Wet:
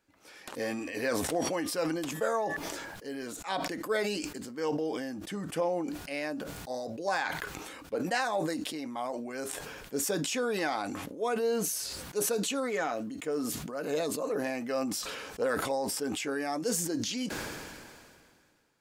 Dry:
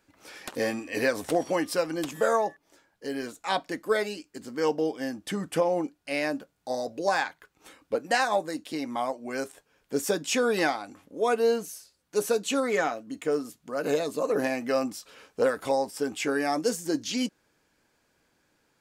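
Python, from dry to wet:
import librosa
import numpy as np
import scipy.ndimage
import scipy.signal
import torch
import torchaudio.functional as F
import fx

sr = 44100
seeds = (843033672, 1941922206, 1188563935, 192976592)

y = fx.sustainer(x, sr, db_per_s=28.0)
y = F.gain(torch.from_numpy(y), -6.5).numpy()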